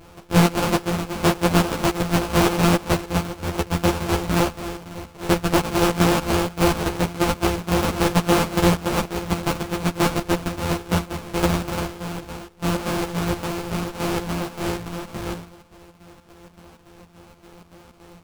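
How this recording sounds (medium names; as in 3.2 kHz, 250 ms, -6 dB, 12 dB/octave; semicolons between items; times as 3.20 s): a buzz of ramps at a fixed pitch in blocks of 256 samples; chopped level 3.5 Hz, depth 60%, duty 65%; aliases and images of a low sample rate 1.9 kHz, jitter 20%; a shimmering, thickened sound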